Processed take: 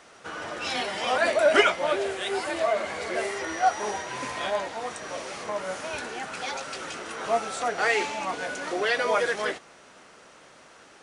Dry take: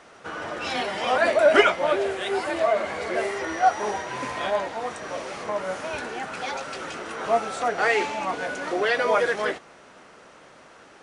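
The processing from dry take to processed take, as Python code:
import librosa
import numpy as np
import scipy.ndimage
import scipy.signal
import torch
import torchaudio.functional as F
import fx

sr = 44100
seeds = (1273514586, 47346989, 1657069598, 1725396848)

y = fx.high_shelf(x, sr, hz=3100.0, db=7.5)
y = y * librosa.db_to_amplitude(-3.5)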